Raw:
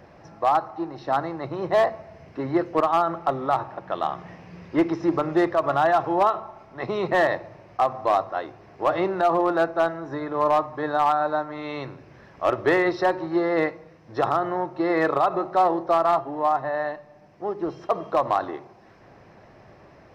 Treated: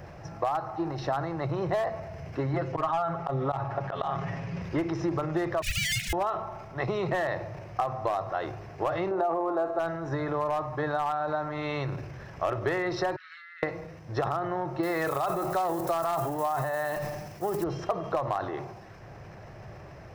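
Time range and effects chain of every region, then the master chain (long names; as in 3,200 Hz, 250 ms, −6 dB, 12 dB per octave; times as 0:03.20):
0:02.53–0:04.62: high-frequency loss of the air 51 metres + comb filter 7.3 ms, depth 99% + volume swells 120 ms
0:05.62–0:06.13: three sine waves on the formant tracks + leveller curve on the samples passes 5 + inverse Chebyshev band-stop filter 320–1,200 Hz
0:09.11–0:09.79: flat-topped bell 560 Hz +12.5 dB 2.5 octaves + notch filter 1,000 Hz, Q 17 + tuned comb filter 96 Hz, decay 1 s
0:13.16–0:13.63: Butterworth high-pass 1,300 Hz 96 dB per octave + high-frequency loss of the air 250 metres + downward compressor 5 to 1, threshold −48 dBFS
0:14.83–0:17.64: one scale factor per block 7 bits + high-shelf EQ 3,800 Hz +11 dB + level that may fall only so fast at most 56 dB per second
whole clip: octave-band graphic EQ 125/250/500/1,000/2,000/4,000 Hz +3/−11/−4/−6/−4/−7 dB; downward compressor 6 to 1, threshold −35 dBFS; transient designer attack +1 dB, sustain +6 dB; level +8.5 dB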